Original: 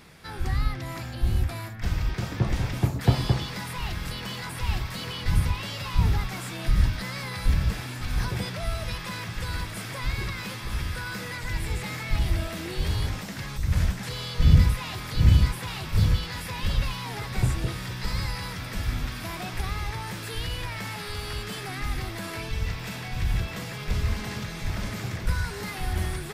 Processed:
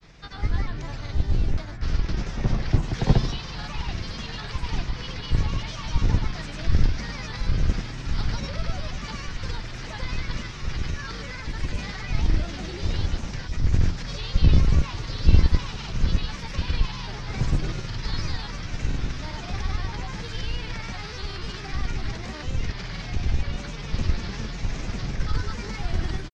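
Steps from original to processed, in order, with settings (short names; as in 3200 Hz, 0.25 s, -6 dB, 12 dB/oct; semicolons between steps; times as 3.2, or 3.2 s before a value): octaver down 2 oct, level +3 dB; bell 6000 Hz +14 dB 0.92 oct; grains, pitch spread up and down by 3 st; air absorption 170 m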